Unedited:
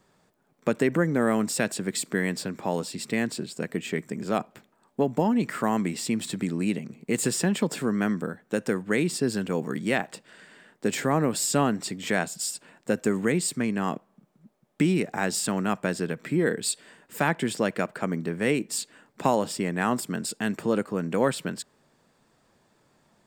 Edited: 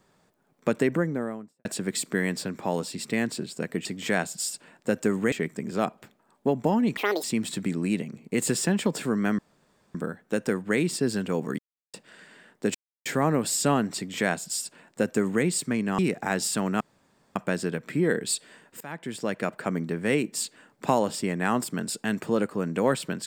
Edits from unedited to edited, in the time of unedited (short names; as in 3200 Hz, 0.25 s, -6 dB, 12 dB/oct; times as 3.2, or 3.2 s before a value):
0.75–1.65 studio fade out
5.5–6 speed 188%
8.15 insert room tone 0.56 s
9.79–10.14 mute
10.95 insert silence 0.31 s
11.86–13.33 copy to 3.85
13.88–14.9 cut
15.72 insert room tone 0.55 s
17.17–17.93 fade in linear, from -21.5 dB